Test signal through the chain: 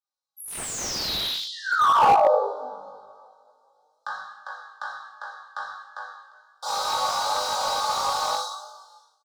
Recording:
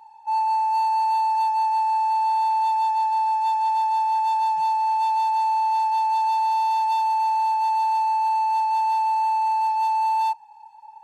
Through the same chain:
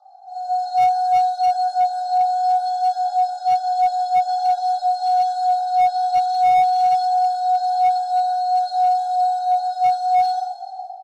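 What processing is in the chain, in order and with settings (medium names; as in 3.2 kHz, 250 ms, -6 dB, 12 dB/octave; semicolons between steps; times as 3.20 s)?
steep high-pass 800 Hz 48 dB/octave; distance through air 110 m; compression 1.5:1, threshold -33 dBFS; comb 3 ms, depth 92%; flutter echo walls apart 3.4 m, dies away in 0.37 s; frequency shift -150 Hz; two-slope reverb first 0.91 s, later 2.3 s, from -17 dB, DRR -5 dB; flange 0.23 Hz, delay 4.7 ms, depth 9.1 ms, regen +45%; level rider gain up to 12 dB; elliptic band-stop 1.3–3.9 kHz, stop band 80 dB; slew-rate limiter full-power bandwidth 180 Hz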